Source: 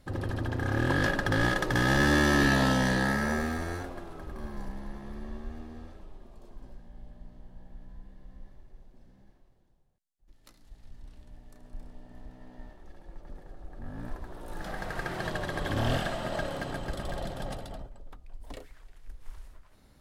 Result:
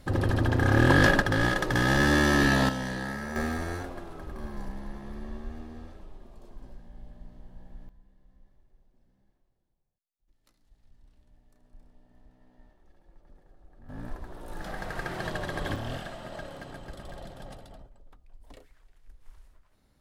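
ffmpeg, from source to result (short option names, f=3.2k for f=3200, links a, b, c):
-af "asetnsamples=n=441:p=0,asendcmd='1.22 volume volume 1dB;2.69 volume volume -7dB;3.36 volume volume 1dB;7.89 volume volume -11dB;13.89 volume volume 0dB;15.76 volume volume -7.5dB',volume=7dB"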